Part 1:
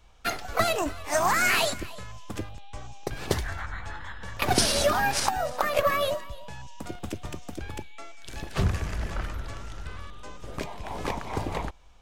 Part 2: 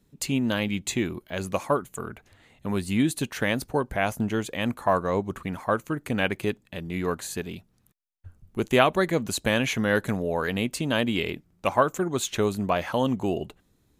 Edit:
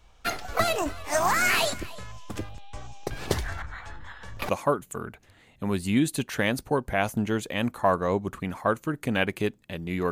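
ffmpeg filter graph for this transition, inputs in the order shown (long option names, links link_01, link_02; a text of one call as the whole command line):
ffmpeg -i cue0.wav -i cue1.wav -filter_complex "[0:a]asettb=1/sr,asplit=3[link_01][link_02][link_03];[link_01]atrim=end=3.624[link_04];[link_02]atrim=start=3.62:end=4.49,asetpts=PTS-STARTPTS,afade=type=in:duration=0.004:curve=qsin,afade=type=out:start_time=0.866:duration=0.004:curve=qsin,acrossover=split=450[link_05][link_06];[link_05]aeval=exprs='val(0)*(1-0.7/2+0.7/2*cos(2*PI*2.7*n/s))':channel_layout=same[link_07];[link_06]aeval=exprs='val(0)*(1-0.7/2-0.7/2*cos(2*PI*2.7*n/s))':channel_layout=same[link_08];[link_07][link_08]amix=inputs=2:normalize=0[link_09];[link_03]atrim=start=4.486[link_10];[link_04][link_09]acrossfade=duration=0.004:curve1=hsin:curve2=qsin[link_11];[link_11][link_10]acrossfade=duration=0.004:curve1=qsin:curve2=hsin,apad=whole_dur=10.11,atrim=end=10.11,atrim=end=4.492[link_12];[1:a]atrim=start=1.518:end=7.14[link_13];[link_12][link_13]acrossfade=duration=0.004:curve1=hsin:curve2=hsin" out.wav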